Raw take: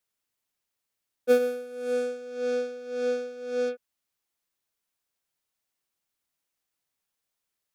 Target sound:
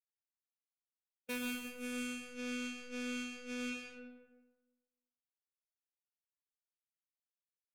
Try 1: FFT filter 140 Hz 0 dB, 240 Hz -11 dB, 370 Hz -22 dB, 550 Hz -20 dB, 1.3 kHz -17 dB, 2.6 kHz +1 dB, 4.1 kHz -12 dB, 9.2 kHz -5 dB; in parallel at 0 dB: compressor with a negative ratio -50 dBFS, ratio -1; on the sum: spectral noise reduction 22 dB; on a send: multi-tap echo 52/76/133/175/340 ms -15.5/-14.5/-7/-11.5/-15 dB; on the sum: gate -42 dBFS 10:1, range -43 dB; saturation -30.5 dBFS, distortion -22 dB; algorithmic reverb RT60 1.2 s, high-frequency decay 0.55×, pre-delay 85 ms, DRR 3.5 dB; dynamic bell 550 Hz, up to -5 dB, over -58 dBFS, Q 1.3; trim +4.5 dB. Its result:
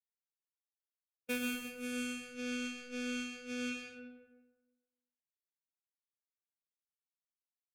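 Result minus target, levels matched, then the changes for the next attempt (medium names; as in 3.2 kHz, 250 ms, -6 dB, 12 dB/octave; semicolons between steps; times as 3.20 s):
saturation: distortion -9 dB
change: saturation -38.5 dBFS, distortion -13 dB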